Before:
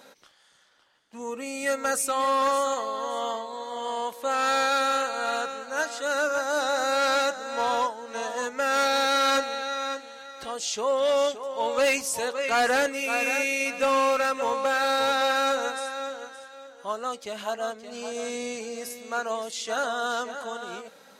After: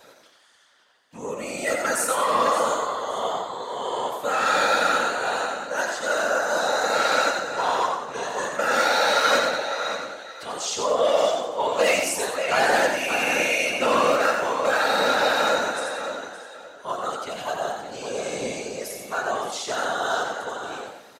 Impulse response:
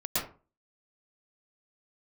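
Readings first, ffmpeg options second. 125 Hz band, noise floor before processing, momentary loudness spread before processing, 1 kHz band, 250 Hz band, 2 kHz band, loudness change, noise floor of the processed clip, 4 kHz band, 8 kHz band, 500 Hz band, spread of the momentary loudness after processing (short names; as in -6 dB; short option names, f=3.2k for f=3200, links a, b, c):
n/a, -54 dBFS, 12 LU, +3.0 dB, +1.5 dB, +4.0 dB, +3.0 dB, -52 dBFS, +3.0 dB, +2.5 dB, +3.0 dB, 12 LU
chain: -filter_complex "[0:a]highpass=200,asplit=2[a][b];[1:a]atrim=start_sample=2205[c];[b][c]afir=irnorm=-1:irlink=0,volume=-16.5dB[d];[a][d]amix=inputs=2:normalize=0,afftfilt=real='hypot(re,im)*cos(2*PI*random(0))':imag='hypot(re,im)*sin(2*PI*random(1))':win_size=512:overlap=0.75,asplit=5[e][f][g][h][i];[f]adelay=89,afreqshift=71,volume=-5.5dB[j];[g]adelay=178,afreqshift=142,volume=-14.9dB[k];[h]adelay=267,afreqshift=213,volume=-24.2dB[l];[i]adelay=356,afreqshift=284,volume=-33.6dB[m];[e][j][k][l][m]amix=inputs=5:normalize=0,volume=6.5dB"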